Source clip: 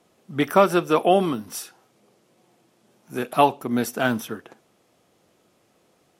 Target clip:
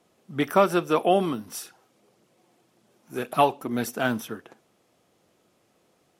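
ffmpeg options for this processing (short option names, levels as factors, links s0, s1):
-filter_complex "[0:a]asplit=3[s0][s1][s2];[s0]afade=t=out:st=1.61:d=0.02[s3];[s1]aphaser=in_gain=1:out_gain=1:delay=4.1:decay=0.35:speed=1.8:type=triangular,afade=t=in:st=1.61:d=0.02,afade=t=out:st=3.91:d=0.02[s4];[s2]afade=t=in:st=3.91:d=0.02[s5];[s3][s4][s5]amix=inputs=3:normalize=0,volume=0.708"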